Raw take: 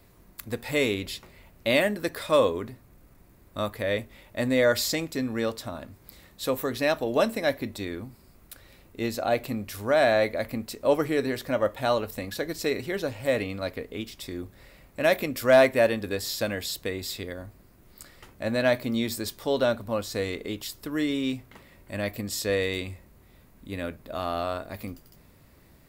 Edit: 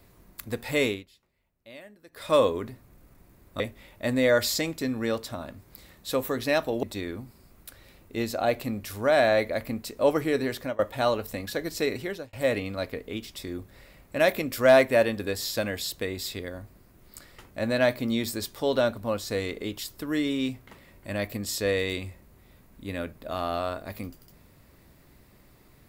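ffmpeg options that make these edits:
-filter_complex "[0:a]asplit=7[s0][s1][s2][s3][s4][s5][s6];[s0]atrim=end=1.05,asetpts=PTS-STARTPTS,afade=t=out:st=0.86:d=0.19:silence=0.0668344[s7];[s1]atrim=start=1.05:end=2.12,asetpts=PTS-STARTPTS,volume=0.0668[s8];[s2]atrim=start=2.12:end=3.602,asetpts=PTS-STARTPTS,afade=t=in:d=0.19:silence=0.0668344[s9];[s3]atrim=start=3.938:end=7.172[s10];[s4]atrim=start=7.668:end=11.63,asetpts=PTS-STARTPTS,afade=t=out:st=3.702:d=0.26:c=qsin:silence=0.0668344[s11];[s5]atrim=start=11.63:end=13.17,asetpts=PTS-STARTPTS,afade=t=in:d=0.004:c=hsin:silence=0.0668344,afade=t=out:st=1.21:d=0.33[s12];[s6]atrim=start=13.17,asetpts=PTS-STARTPTS,afade=t=in:d=0.004:c=hsin[s13];[s7][s8][s9]concat=n=3:v=0:a=1[s14];[s14][s10]acrossfade=d=0.004:c1=hsin:c2=hsin[s15];[s11][s12][s13]concat=n=3:v=0:a=1[s16];[s15][s16]acrossfade=d=0.004:c1=hsin:c2=hsin"

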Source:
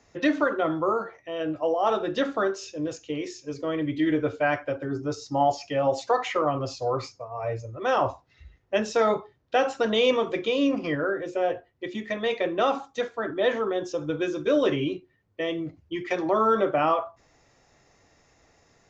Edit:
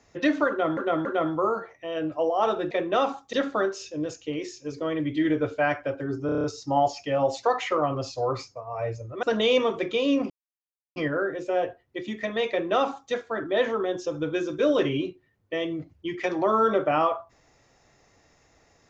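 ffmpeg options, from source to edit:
-filter_complex "[0:a]asplit=13[s0][s1][s2][s3][s4][s5][s6][s7][s8][s9][s10][s11][s12];[s0]atrim=end=0.772[s13];[s1]atrim=start=0.488:end=0.772[s14];[s2]atrim=start=0.488:end=2.152[s15];[s3]atrim=start=12.368:end=12.992[s16];[s4]atrim=start=2.148:end=5.112[s17];[s5]atrim=start=5.078:end=5.112[s18];[s6]atrim=start=5.078:end=5.112[s19];[s7]atrim=start=5.078:end=5.112[s20];[s8]atrim=start=5.078:end=5.112[s21];[s9]atrim=start=5.078:end=5.112[s22];[s10]atrim=start=5.078:end=7.872[s23];[s11]atrim=start=9.758:end=10.83,asetpts=PTS-STARTPTS,afade=t=out:st=1.068:d=0.004:c=hsin,apad=pad_dur=0.66[s24];[s12]atrim=start=10.83,asetpts=PTS-STARTPTS,afade=t=in:d=0.004:c=hsin[s25];[s13][s14]acrossfade=d=0.004:c1=hsin:c2=hsin[s26];[s26][s15]acrossfade=d=0.004:c1=hsin:c2=hsin[s27];[s27][s16]acrossfade=d=0.004:c1=hsin:c2=hsin[s28];[s28][s17]acrossfade=d=0.004:c1=hsin:c2=hsin[s29];[s29][s18]acrossfade=d=0.004:c1=hsin:c2=hsin[s30];[s30][s19]acrossfade=d=0.004:c1=hsin:c2=hsin[s31];[s31][s20]acrossfade=d=0.004:c1=hsin:c2=hsin[s32];[s32][s21]acrossfade=d=0.004:c1=hsin:c2=hsin[s33];[s33][s22]acrossfade=d=0.004:c1=hsin:c2=hsin[s34];[s34][s23]acrossfade=d=0.004:c1=hsin:c2=hsin[s35];[s24][s25]concat=n=2:v=0:a=1[s36];[s35][s36]acrossfade=d=0.004:c1=hsin:c2=hsin"

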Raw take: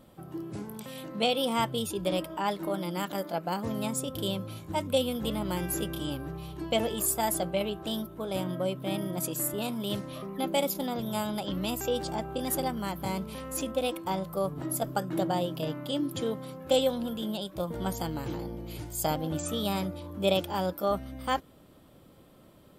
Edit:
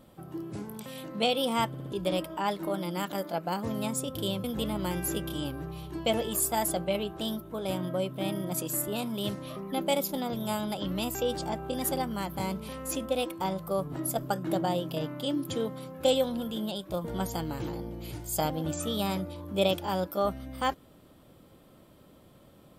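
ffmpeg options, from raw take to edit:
-filter_complex "[0:a]asplit=6[s0][s1][s2][s3][s4][s5];[s0]atrim=end=1.742[s6];[s1]atrim=start=1.678:end=1.742[s7];[s2]atrim=start=1.678:end=1.742[s8];[s3]atrim=start=1.678:end=1.742[s9];[s4]atrim=start=1.918:end=4.442[s10];[s5]atrim=start=5.098[s11];[s6][s7]acrossfade=d=0.004:c1=hsin:c2=hsin[s12];[s12][s8]acrossfade=d=0.004:c1=hsin:c2=hsin[s13];[s13][s9]acrossfade=d=0.004:c1=hsin:c2=hsin[s14];[s14][s10]acrossfade=d=0.004:c1=hsin:c2=hsin[s15];[s15][s11]acrossfade=d=0.004:c1=hsin:c2=hsin"

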